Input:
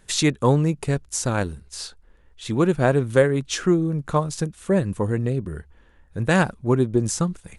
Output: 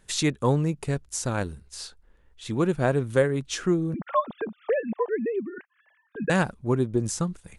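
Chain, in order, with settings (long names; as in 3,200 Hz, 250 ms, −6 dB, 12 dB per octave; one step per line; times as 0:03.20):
0:03.94–0:06.30: three sine waves on the formant tracks
level −4.5 dB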